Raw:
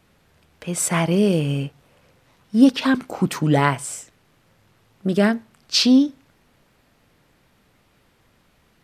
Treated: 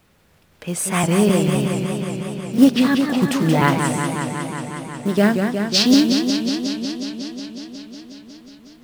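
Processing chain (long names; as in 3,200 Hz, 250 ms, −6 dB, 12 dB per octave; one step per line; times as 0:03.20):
pitch shifter gated in a rhythm +1 semitone, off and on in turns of 258 ms
log-companded quantiser 6 bits
feedback echo with a swinging delay time 182 ms, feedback 80%, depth 150 cents, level −6 dB
level +1 dB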